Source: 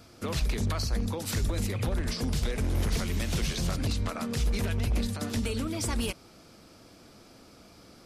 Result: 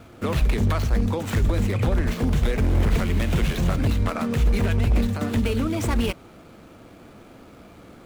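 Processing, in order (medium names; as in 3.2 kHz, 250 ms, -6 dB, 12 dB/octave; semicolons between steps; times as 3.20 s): median filter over 9 samples; trim +8 dB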